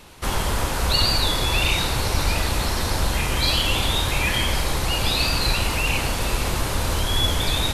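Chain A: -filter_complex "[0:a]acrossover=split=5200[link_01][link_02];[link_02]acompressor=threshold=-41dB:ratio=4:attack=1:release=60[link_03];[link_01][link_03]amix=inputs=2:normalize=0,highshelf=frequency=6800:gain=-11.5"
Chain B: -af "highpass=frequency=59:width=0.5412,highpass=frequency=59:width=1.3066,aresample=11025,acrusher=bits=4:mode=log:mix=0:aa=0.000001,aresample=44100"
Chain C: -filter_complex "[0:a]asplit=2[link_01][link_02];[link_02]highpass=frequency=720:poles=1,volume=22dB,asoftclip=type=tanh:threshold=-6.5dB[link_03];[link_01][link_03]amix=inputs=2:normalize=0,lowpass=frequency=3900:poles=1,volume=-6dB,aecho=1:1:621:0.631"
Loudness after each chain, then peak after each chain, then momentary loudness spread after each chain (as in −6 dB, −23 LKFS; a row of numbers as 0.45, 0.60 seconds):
−23.5, −22.5, −13.0 LKFS; −8.0, −7.0, −4.5 dBFS; 4, 6, 3 LU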